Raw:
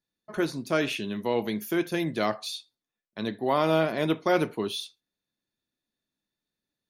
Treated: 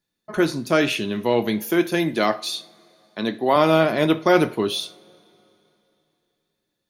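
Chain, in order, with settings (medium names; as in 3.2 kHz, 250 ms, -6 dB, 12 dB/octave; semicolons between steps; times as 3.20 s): 1.68–3.56 s: high-pass 170 Hz 12 dB/octave; two-slope reverb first 0.37 s, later 3.2 s, from -22 dB, DRR 12.5 dB; trim +7 dB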